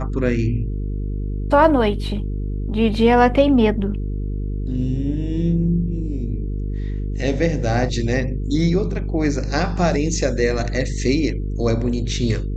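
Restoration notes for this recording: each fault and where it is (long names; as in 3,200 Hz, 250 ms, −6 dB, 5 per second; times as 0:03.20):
mains buzz 50 Hz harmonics 9 −24 dBFS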